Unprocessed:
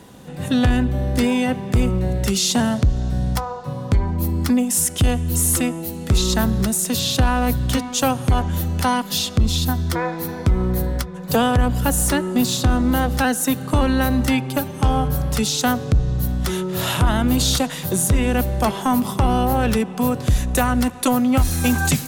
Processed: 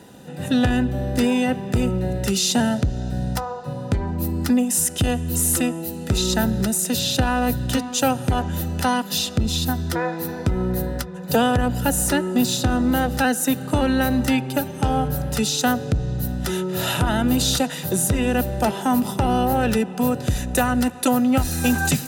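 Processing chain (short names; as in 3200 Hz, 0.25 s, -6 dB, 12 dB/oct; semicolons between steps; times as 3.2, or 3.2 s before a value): notch comb 1100 Hz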